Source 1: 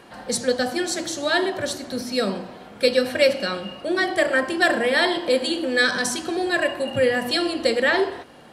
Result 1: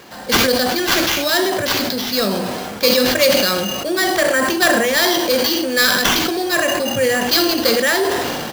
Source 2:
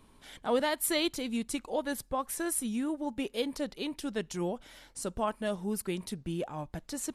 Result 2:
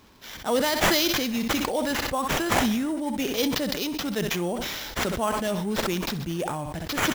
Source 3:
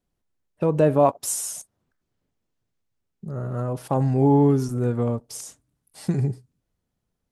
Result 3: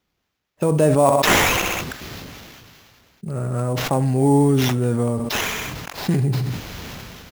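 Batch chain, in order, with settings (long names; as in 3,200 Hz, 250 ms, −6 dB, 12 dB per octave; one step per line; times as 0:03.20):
high-pass filter 44 Hz
parametric band 6,800 Hz +11.5 dB 1.6 octaves
in parallel at −1.5 dB: downward compressor, threshold −25 dBFS
on the sum: sample-rate reduction 9,100 Hz, jitter 0%
on a send: repeating echo 64 ms, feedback 36%, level −19 dB
on the sum: level that may fall only so fast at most 24 dB per second
level −1 dB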